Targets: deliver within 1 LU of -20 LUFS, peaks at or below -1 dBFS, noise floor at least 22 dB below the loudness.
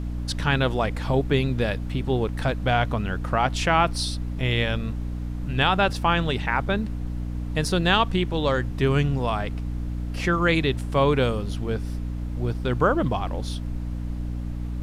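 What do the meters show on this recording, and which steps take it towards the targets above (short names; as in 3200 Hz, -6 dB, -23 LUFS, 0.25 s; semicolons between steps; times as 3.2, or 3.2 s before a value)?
hum 60 Hz; harmonics up to 300 Hz; hum level -27 dBFS; noise floor -30 dBFS; noise floor target -47 dBFS; loudness -24.5 LUFS; peak -6.5 dBFS; loudness target -20.0 LUFS
-> notches 60/120/180/240/300 Hz; noise print and reduce 17 dB; gain +4.5 dB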